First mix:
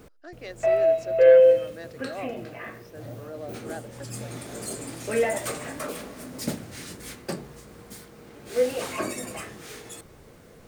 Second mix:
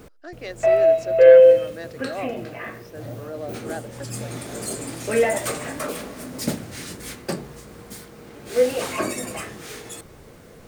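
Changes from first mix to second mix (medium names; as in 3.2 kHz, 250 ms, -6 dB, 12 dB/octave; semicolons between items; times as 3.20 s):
speech +5.0 dB; background +4.5 dB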